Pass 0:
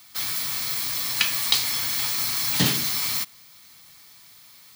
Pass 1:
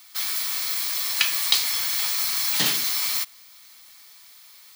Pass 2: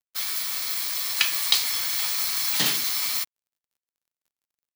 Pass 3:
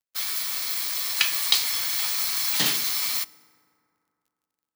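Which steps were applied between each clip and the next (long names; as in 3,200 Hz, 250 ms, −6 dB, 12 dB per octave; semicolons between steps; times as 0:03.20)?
high-pass filter 730 Hz 6 dB per octave; level +1 dB
dead-zone distortion −39 dBFS
feedback delay network reverb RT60 2.6 s, high-frequency decay 0.45×, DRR 19.5 dB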